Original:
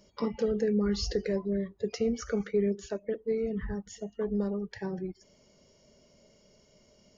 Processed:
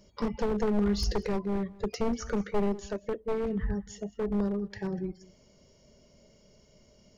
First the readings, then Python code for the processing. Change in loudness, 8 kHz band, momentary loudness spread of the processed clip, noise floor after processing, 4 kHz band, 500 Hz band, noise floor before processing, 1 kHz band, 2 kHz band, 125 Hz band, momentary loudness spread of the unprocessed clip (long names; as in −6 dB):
0.0 dB, can't be measured, 8 LU, −62 dBFS, 0.0 dB, −1.5 dB, −64 dBFS, +8.0 dB, +1.0 dB, +2.0 dB, 9 LU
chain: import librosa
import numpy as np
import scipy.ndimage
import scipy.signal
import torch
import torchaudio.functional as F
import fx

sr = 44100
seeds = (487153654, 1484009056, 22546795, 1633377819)

y = np.minimum(x, 2.0 * 10.0 ** (-27.0 / 20.0) - x)
y = fx.low_shelf(y, sr, hz=140.0, db=7.5)
y = y + 10.0 ** (-21.5 / 20.0) * np.pad(y, (int(192 * sr / 1000.0), 0))[:len(y)]